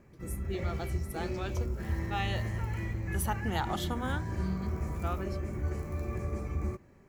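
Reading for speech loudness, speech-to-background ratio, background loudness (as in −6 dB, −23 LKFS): −38.5 LKFS, −2.5 dB, −36.0 LKFS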